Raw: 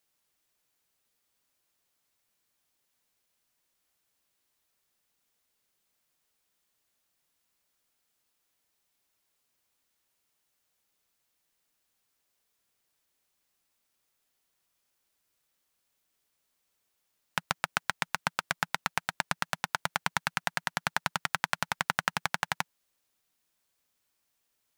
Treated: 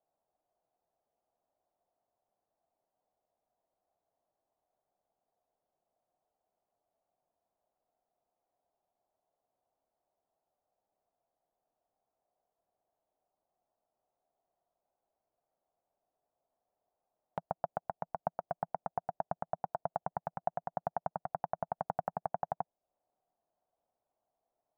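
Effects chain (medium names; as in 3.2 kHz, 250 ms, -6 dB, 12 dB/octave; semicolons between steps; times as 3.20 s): four-pole ladder low-pass 760 Hz, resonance 70%; tape noise reduction on one side only encoder only; trim +5.5 dB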